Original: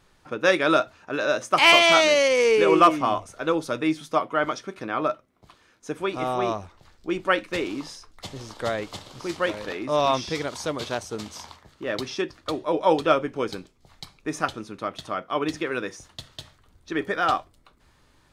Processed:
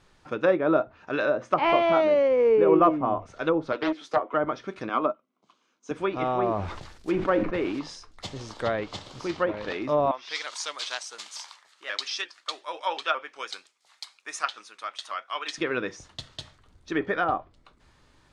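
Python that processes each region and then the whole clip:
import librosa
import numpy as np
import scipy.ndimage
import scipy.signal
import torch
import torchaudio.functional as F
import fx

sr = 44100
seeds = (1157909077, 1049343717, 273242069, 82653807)

y = fx.chain(x, sr, fx.highpass(hz=310.0, slope=24),
    fx.doppler_dist(depth_ms=0.43), at=(3.72, 4.34))
y = fx.chain(y, sr, fx.cabinet(low_hz=180.0, low_slope=24, high_hz=9100.0, hz=(240.0, 1100.0, 3000.0, 6300.0), db=(6, 6, 4, 6)),
    fx.notch(hz=1800.0, q=6.7),
    fx.upward_expand(threshold_db=-43.0, expansion=1.5), at=(4.89, 5.91))
y = fx.chain(y, sr, fx.mod_noise(seeds[0], snr_db=13),
    fx.sustainer(db_per_s=54.0), at=(6.43, 7.79))
y = fx.chain(y, sr, fx.highpass(hz=1200.0, slope=12),
    fx.peak_eq(hz=9500.0, db=5.5, octaves=0.86),
    fx.vibrato_shape(shape='saw_up', rate_hz=5.6, depth_cents=100.0), at=(10.11, 15.58))
y = scipy.signal.sosfilt(scipy.signal.butter(2, 8700.0, 'lowpass', fs=sr, output='sos'), y)
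y = fx.env_lowpass_down(y, sr, base_hz=880.0, full_db=-19.0)
y = fx.dynamic_eq(y, sr, hz=4400.0, q=0.86, threshold_db=-39.0, ratio=4.0, max_db=6)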